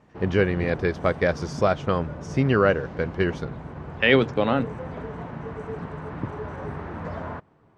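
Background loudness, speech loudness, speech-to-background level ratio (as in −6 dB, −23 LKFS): −36.0 LKFS, −23.5 LKFS, 12.5 dB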